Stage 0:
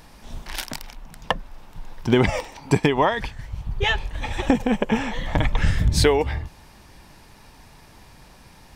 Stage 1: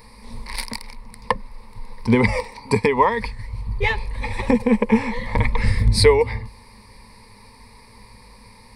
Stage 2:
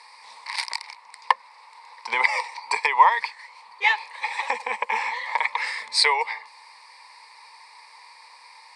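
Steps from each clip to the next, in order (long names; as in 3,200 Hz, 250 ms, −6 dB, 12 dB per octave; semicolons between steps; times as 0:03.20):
EQ curve with evenly spaced ripples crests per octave 0.92, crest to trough 16 dB; level −1.5 dB
elliptic band-pass filter 790–7,800 Hz, stop band 80 dB; level +3 dB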